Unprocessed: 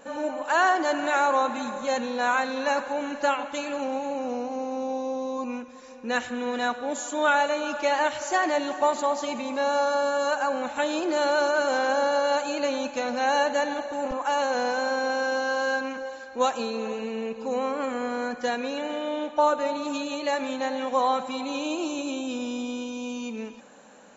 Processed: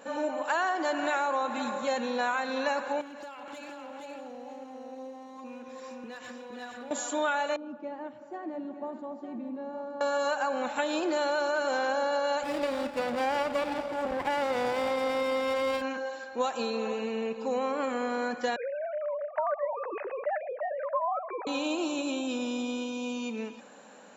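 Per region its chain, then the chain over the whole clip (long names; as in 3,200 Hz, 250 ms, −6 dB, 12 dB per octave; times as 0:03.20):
0:03.01–0:06.91: downward compressor 20 to 1, threshold −38 dBFS + hard clipping −37.5 dBFS + single-tap delay 467 ms −3.5 dB
0:07.56–0:10.01: resonant band-pass 210 Hz, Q 2 + single-tap delay 909 ms −11.5 dB
0:12.43–0:15.82: low-pass filter 5,500 Hz + windowed peak hold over 17 samples
0:18.56–0:21.47: three sine waves on the formant tracks + Butterworth low-pass 1,900 Hz + downward compressor 1.5 to 1, threshold −31 dBFS
whole clip: high-pass filter 150 Hz 6 dB per octave; notch filter 6,300 Hz, Q 9.9; downward compressor, threshold −25 dBFS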